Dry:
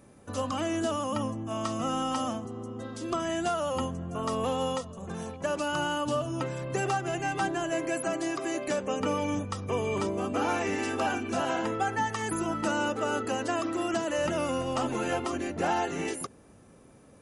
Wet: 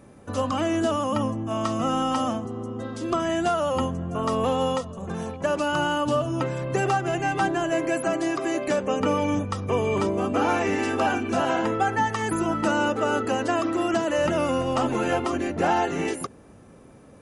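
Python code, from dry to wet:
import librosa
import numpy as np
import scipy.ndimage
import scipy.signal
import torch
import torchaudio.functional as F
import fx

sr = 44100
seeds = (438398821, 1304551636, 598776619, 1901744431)

y = fx.high_shelf(x, sr, hz=4000.0, db=-6.5)
y = y * librosa.db_to_amplitude(6.0)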